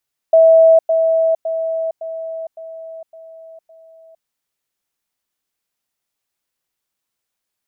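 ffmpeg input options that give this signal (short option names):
-f lavfi -i "aevalsrc='pow(10,(-5.5-6*floor(t/0.56))/20)*sin(2*PI*651*t)*clip(min(mod(t,0.56),0.46-mod(t,0.56))/0.005,0,1)':d=3.92:s=44100"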